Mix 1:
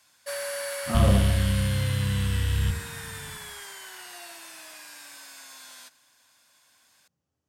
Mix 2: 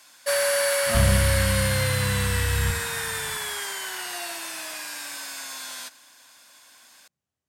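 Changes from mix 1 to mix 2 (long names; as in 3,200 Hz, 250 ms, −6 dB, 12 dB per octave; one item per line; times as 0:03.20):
speech: send −10.0 dB
first sound +10.0 dB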